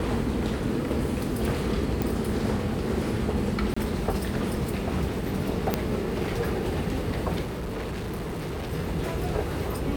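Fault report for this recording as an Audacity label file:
2.020000	2.020000	pop
3.740000	3.770000	dropout 25 ms
5.740000	5.740000	pop -8 dBFS
7.410000	8.730000	clipped -29 dBFS

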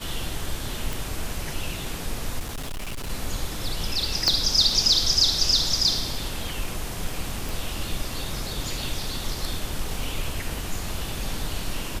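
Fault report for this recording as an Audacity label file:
0.930000	0.930000	pop
2.390000	3.100000	clipped -28 dBFS
4.280000	4.280000	pop -6 dBFS
7.490000	7.490000	pop

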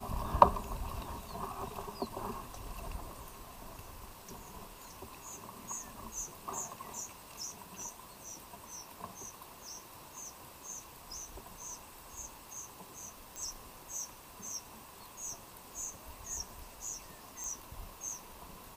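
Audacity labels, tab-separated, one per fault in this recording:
13.360000	13.360000	pop
17.440000	17.440000	pop

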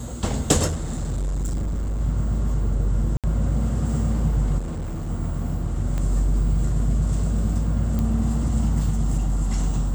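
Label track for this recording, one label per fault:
0.670000	2.010000	clipped -22 dBFS
3.170000	3.240000	dropout 67 ms
4.580000	5.100000	clipped -25.5 dBFS
5.980000	5.980000	pop -16 dBFS
7.990000	7.990000	pop -14 dBFS

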